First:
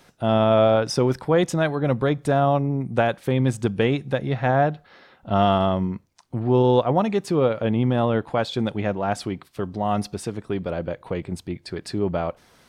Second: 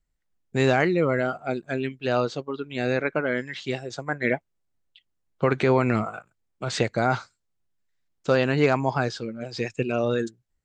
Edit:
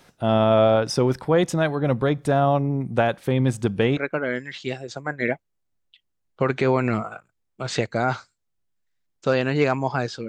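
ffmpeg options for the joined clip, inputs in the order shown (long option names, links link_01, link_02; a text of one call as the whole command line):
ffmpeg -i cue0.wav -i cue1.wav -filter_complex "[0:a]apad=whole_dur=10.28,atrim=end=10.28,atrim=end=3.972[link_01];[1:a]atrim=start=2.988:end=9.3[link_02];[link_01][link_02]acrossfade=duration=0.004:curve1=hsin:curve2=hsin" out.wav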